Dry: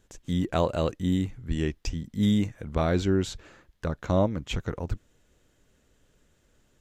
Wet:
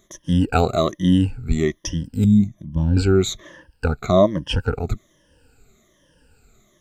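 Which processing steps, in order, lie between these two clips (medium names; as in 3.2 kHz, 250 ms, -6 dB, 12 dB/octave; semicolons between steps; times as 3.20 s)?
drifting ripple filter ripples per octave 1.2, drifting -1.2 Hz, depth 21 dB; 2.24–2.97 s: FFT filter 260 Hz 0 dB, 460 Hz -24 dB, 760 Hz -13 dB, 1.8 kHz -27 dB, 2.9 kHz -15 dB; trim +4 dB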